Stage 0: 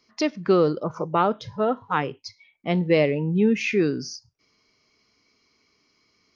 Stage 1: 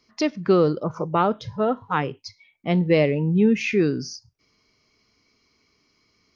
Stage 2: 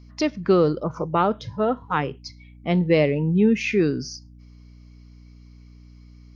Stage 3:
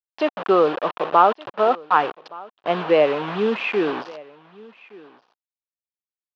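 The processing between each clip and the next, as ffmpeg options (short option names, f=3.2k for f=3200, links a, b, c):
-af "lowshelf=f=140:g=7.5"
-af "aeval=exprs='val(0)+0.00562*(sin(2*PI*60*n/s)+sin(2*PI*2*60*n/s)/2+sin(2*PI*3*60*n/s)/3+sin(2*PI*4*60*n/s)/4+sin(2*PI*5*60*n/s)/5)':c=same"
-af "acrusher=bits=4:mix=0:aa=0.000001,highpass=490,equalizer=f=750:t=q:w=4:g=4,equalizer=f=1.1k:t=q:w=4:g=4,equalizer=f=2.1k:t=q:w=4:g=-9,lowpass=f=3k:w=0.5412,lowpass=f=3k:w=1.3066,aecho=1:1:1169:0.075,volume=5.5dB"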